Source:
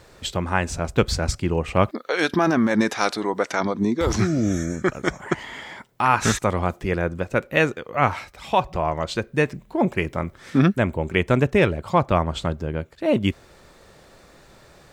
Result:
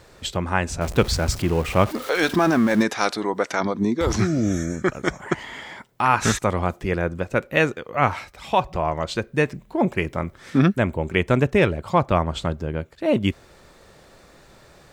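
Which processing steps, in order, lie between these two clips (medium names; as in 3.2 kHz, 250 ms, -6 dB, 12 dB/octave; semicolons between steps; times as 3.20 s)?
0.81–2.83 s: jump at every zero crossing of -29.5 dBFS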